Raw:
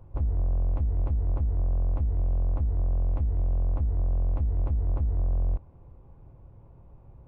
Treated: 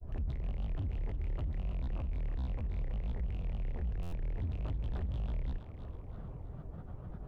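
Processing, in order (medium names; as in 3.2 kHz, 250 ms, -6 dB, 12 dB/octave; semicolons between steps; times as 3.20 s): rattle on loud lows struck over -37 dBFS, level -38 dBFS; band-stop 780 Hz, Q 12; in parallel at +0.5 dB: compression, threshold -38 dBFS, peak gain reduction 15 dB; on the sum: peak limiter -29.5 dBFS, peak gain reduction 11.5 dB; one-sided clip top -31.5 dBFS, bottom -32.5 dBFS; granulator, spray 21 ms, pitch spread up and down by 7 st; on a send: thinning echo 325 ms, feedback 48%, high-pass 160 Hz, level -8.5 dB; on the sum: buffer glitch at 4.02 s, samples 512, times 8; trim +1 dB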